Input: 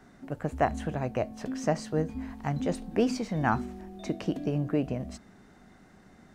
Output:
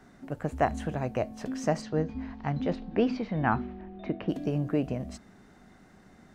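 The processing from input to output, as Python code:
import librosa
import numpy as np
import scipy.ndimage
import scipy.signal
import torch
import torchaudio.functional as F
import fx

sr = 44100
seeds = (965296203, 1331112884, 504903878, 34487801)

y = fx.lowpass(x, sr, hz=fx.line((1.81, 5800.0), (4.28, 2800.0)), slope=24, at=(1.81, 4.28), fade=0.02)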